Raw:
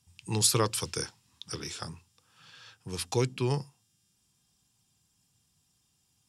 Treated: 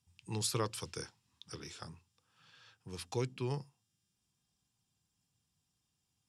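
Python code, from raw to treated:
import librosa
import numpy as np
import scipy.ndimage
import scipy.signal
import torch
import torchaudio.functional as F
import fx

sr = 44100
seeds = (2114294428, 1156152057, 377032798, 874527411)

y = fx.high_shelf(x, sr, hz=5800.0, db=-6.0)
y = y * 10.0 ** (-8.0 / 20.0)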